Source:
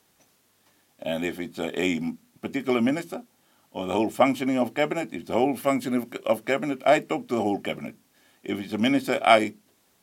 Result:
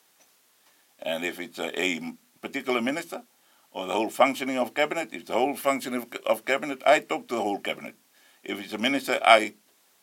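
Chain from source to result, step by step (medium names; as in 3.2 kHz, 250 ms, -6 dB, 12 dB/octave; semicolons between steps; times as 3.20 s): high-pass 690 Hz 6 dB/octave; trim +3 dB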